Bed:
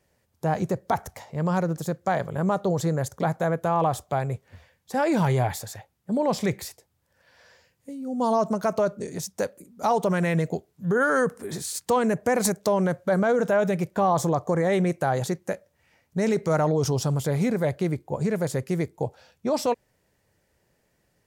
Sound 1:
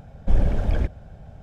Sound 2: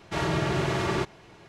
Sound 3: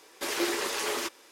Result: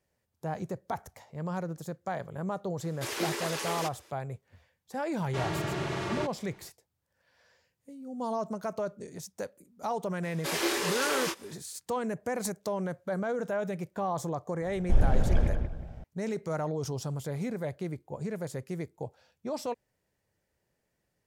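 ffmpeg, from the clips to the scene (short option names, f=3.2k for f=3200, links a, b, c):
-filter_complex "[3:a]asplit=2[a][b];[0:a]volume=-10dB[c];[2:a]equalizer=f=60:t=o:w=0.77:g=-7[d];[b]asplit=2[e][f];[f]adelay=27,volume=-3dB[g];[e][g]amix=inputs=2:normalize=0[h];[1:a]asplit=2[i][j];[j]adelay=183,lowpass=f=2k:p=1,volume=-5dB,asplit=2[k][l];[l]adelay=183,lowpass=f=2k:p=1,volume=0.31,asplit=2[m][n];[n]adelay=183,lowpass=f=2k:p=1,volume=0.31,asplit=2[o][p];[p]adelay=183,lowpass=f=2k:p=1,volume=0.31[q];[i][k][m][o][q]amix=inputs=5:normalize=0[r];[a]atrim=end=1.31,asetpts=PTS-STARTPTS,volume=-4dB,afade=t=in:d=0.004:c=hsin,afade=t=out:st=1.306:d=0.004:c=hsin,adelay=2800[s];[d]atrim=end=1.48,asetpts=PTS-STARTPTS,volume=-6dB,afade=t=in:d=0.004:c=hsin,afade=t=out:st=1.476:d=0.004:c=hsin,adelay=5220[t];[h]atrim=end=1.31,asetpts=PTS-STARTPTS,volume=-1.5dB,afade=t=in:d=0.004:c=hsin,afade=t=out:st=1.306:d=0.004:c=hsin,adelay=10230[u];[r]atrim=end=1.42,asetpts=PTS-STARTPTS,volume=-4dB,afade=t=in:d=0.004:c=hsin,afade=t=out:st=1.416:d=0.004:c=hsin,adelay=14620[v];[c][s][t][u][v]amix=inputs=5:normalize=0"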